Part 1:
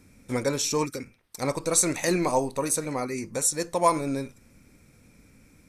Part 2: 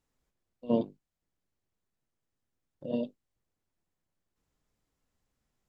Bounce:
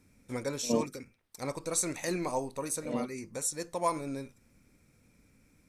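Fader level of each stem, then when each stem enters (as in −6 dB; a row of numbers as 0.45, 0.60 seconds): −8.5, −2.5 decibels; 0.00, 0.00 seconds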